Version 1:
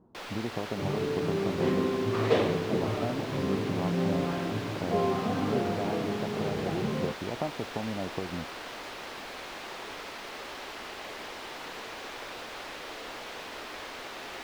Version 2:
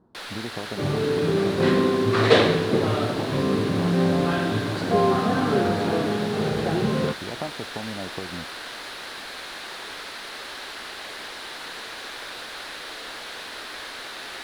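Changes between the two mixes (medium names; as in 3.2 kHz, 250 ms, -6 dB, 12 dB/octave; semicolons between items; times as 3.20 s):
second sound +7.5 dB; master: add fifteen-band graphic EQ 1.6 kHz +7 dB, 4 kHz +9 dB, 10 kHz +11 dB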